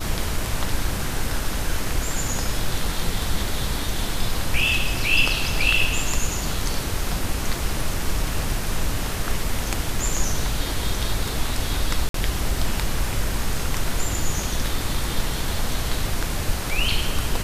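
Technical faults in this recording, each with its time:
0:12.09–0:12.14: drop-out 53 ms

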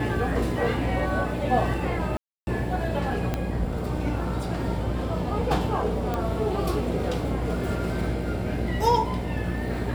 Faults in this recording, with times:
mains buzz 60 Hz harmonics 13 −30 dBFS
0:02.17–0:02.47: drop-out 300 ms
0:03.34: click −13 dBFS
0:06.14: click −15 dBFS

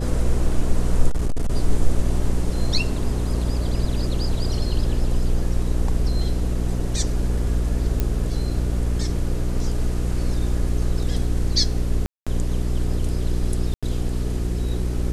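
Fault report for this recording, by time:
mains hum 60 Hz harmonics 7 −24 dBFS
0:01.09–0:01.55: clipping −16.5 dBFS
0:08.00: click −10 dBFS
0:12.06–0:12.27: drop-out 206 ms
0:13.74–0:13.83: drop-out 86 ms

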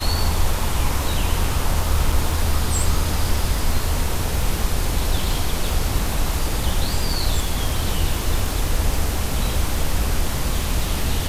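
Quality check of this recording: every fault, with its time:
surface crackle 44 per second −24 dBFS
0:02.12: drop-out 3.9 ms

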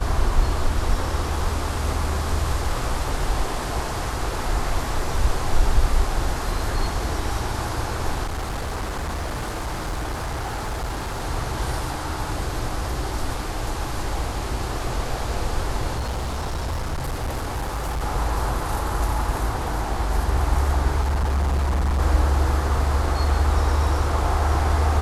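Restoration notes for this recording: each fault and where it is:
0:08.23–0:11.22: clipping −23.5 dBFS
0:15.97–0:18.03: clipping −22.5 dBFS
0:21.01–0:22.00: clipping −18 dBFS

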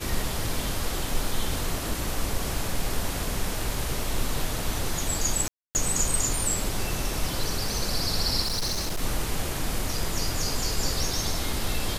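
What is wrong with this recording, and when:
0:05.48–0:05.75: drop-out 269 ms
0:08.42–0:09.02: clipping −24 dBFS

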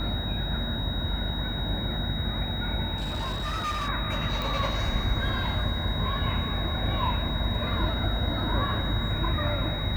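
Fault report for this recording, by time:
mains buzz 50 Hz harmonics 19 −33 dBFS
whistle 3,800 Hz −34 dBFS
0:02.96–0:03.89: clipping −26.5 dBFS
0:04.42: click

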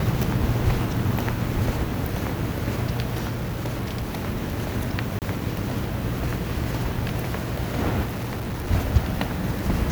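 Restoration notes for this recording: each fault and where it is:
0:03.27–0:04.26: clipping −23.5 dBFS
0:05.19–0:05.22: drop-out 28 ms
0:08.04–0:08.71: clipping −25.5 dBFS

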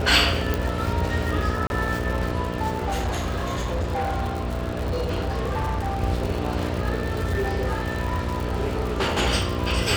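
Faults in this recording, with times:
mains buzz 60 Hz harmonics 11 −28 dBFS
surface crackle 130 per second −27 dBFS
0:00.54: click
0:01.67–0:01.70: drop-out 31 ms
0:02.78–0:06.02: clipping −21.5 dBFS
0:07.02–0:09.19: clipping −19.5 dBFS

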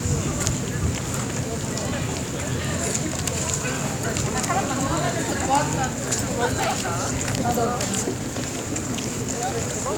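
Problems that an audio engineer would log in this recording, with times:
0:06.57–0:07.02: clipping −19.5 dBFS

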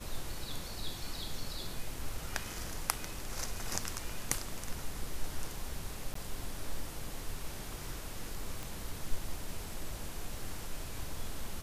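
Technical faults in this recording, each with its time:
0:06.14–0:06.15: drop-out 14 ms
0:08.63: click

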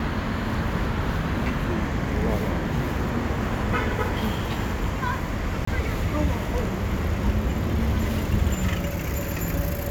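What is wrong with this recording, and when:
0:05.65–0:05.67: drop-out 24 ms

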